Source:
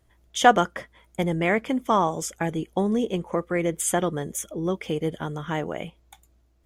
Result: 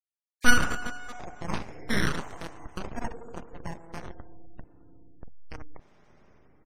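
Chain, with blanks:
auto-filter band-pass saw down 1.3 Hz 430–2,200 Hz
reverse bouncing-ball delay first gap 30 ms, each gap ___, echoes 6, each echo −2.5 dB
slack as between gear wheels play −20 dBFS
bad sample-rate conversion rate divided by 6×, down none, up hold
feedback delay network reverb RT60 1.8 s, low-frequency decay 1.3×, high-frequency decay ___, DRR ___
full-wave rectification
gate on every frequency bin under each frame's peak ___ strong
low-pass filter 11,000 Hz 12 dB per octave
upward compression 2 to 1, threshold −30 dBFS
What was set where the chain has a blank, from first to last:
1.5×, 0.95×, 13.5 dB, −40 dB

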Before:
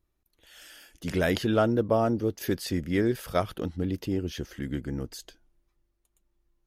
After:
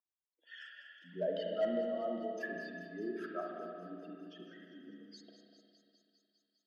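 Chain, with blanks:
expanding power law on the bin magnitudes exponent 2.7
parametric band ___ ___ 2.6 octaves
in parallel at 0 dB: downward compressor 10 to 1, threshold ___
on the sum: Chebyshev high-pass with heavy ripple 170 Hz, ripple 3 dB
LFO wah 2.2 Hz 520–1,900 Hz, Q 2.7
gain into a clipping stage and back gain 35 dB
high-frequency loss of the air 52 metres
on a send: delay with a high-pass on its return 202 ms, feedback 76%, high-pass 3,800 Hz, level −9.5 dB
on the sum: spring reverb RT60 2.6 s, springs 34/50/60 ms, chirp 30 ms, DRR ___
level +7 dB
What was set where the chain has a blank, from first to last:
520 Hz, −14.5 dB, −48 dBFS, −0.5 dB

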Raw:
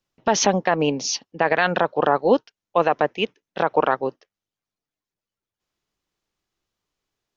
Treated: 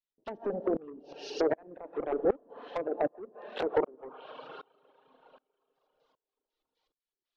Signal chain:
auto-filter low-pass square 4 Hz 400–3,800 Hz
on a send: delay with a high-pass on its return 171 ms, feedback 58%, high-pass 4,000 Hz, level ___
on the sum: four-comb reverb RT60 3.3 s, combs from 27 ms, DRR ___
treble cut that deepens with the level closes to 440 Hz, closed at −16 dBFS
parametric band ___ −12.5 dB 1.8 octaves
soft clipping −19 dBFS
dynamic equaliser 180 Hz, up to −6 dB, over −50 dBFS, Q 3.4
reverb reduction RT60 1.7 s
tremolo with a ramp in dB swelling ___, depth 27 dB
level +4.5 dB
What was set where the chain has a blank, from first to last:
−6 dB, 6 dB, 110 Hz, 1.3 Hz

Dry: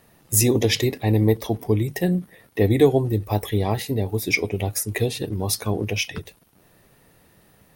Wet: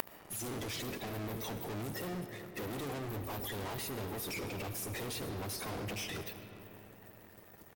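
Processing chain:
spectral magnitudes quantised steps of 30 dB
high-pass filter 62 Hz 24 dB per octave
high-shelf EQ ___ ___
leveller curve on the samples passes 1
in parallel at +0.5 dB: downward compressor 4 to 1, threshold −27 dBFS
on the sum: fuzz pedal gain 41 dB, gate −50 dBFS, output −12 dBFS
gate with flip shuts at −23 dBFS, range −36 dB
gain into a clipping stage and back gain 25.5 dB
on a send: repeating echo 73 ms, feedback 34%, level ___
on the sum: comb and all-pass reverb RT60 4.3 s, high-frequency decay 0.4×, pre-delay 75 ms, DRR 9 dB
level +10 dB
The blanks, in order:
11,000 Hz, +8 dB, −17.5 dB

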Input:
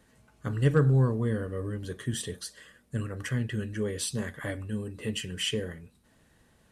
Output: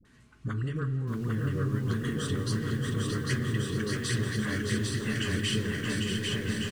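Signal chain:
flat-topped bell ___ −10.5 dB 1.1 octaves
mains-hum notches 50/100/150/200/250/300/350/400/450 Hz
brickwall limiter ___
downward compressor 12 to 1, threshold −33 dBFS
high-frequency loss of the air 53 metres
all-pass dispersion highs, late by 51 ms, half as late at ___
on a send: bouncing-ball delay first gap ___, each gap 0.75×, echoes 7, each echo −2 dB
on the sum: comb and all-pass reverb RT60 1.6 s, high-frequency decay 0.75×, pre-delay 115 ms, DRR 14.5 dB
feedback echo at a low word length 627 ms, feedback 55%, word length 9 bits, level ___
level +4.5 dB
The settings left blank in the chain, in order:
650 Hz, −19 dBFS, 550 Hz, 800 ms, −5.5 dB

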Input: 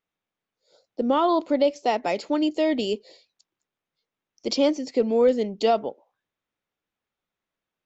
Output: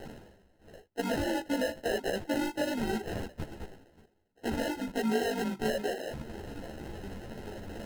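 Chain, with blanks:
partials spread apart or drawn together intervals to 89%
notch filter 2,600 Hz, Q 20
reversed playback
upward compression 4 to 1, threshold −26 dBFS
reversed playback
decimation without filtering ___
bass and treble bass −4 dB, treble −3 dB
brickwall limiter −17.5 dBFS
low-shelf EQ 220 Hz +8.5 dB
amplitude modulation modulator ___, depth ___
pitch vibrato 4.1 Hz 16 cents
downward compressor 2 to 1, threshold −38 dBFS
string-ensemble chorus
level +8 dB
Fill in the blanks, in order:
38×, 50 Hz, 55%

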